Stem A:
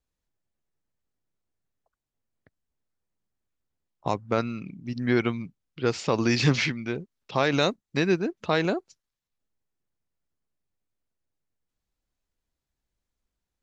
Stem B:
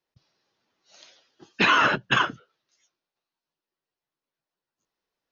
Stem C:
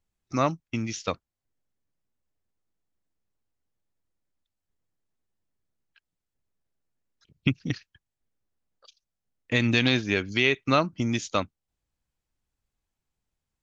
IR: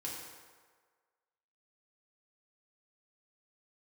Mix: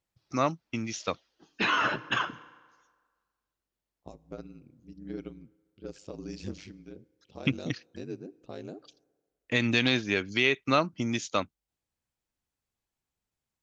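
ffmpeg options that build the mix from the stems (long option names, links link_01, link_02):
-filter_complex "[0:a]equalizer=frequency=125:width_type=o:width=1:gain=-4,equalizer=frequency=1000:width_type=o:width=1:gain=-11,equalizer=frequency=2000:width_type=o:width=1:gain=-12,equalizer=frequency=4000:width_type=o:width=1:gain=-6,aeval=exprs='val(0)*sin(2*PI*49*n/s)':channel_layout=same,volume=-11.5dB,asplit=2[link_01][link_02];[link_02]volume=-19.5dB[link_03];[1:a]flanger=delay=0.3:depth=9.9:regen=-42:speed=0.85:shape=sinusoidal,volume=-4.5dB,asplit=2[link_04][link_05];[link_05]volume=-13dB[link_06];[2:a]highpass=frequency=150:poles=1,volume=-2dB[link_07];[3:a]atrim=start_sample=2205[link_08];[link_03][link_06]amix=inputs=2:normalize=0[link_09];[link_09][link_08]afir=irnorm=-1:irlink=0[link_10];[link_01][link_04][link_07][link_10]amix=inputs=4:normalize=0,aeval=exprs='0.355*(cos(1*acos(clip(val(0)/0.355,-1,1)))-cos(1*PI/2))+0.00251*(cos(5*acos(clip(val(0)/0.355,-1,1)))-cos(5*PI/2))':channel_layout=same"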